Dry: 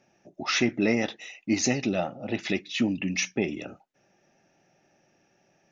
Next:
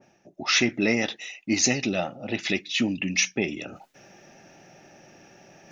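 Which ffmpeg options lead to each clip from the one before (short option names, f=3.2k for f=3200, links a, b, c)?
-af "areverse,acompressor=mode=upward:threshold=-38dB:ratio=2.5,areverse,adynamicequalizer=threshold=0.00708:dfrequency=1700:dqfactor=0.7:tfrequency=1700:tqfactor=0.7:attack=5:release=100:ratio=0.375:range=3:mode=boostabove:tftype=highshelf"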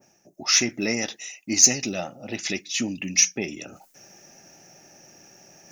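-af "aexciter=amount=4.9:drive=5.8:freq=5.2k,volume=-3dB"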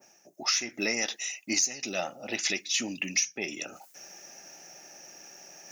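-af "highpass=f=620:p=1,acompressor=threshold=-27dB:ratio=12,volume=3dB"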